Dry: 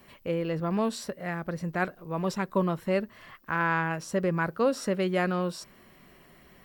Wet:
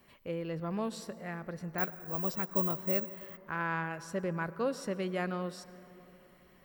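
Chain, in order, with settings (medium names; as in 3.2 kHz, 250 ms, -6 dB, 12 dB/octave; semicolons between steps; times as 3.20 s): on a send at -15.5 dB: reverberation RT60 3.4 s, pre-delay 88 ms; 1.78–3.37 s: on the sum: careless resampling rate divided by 2×, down filtered, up zero stuff; trim -7.5 dB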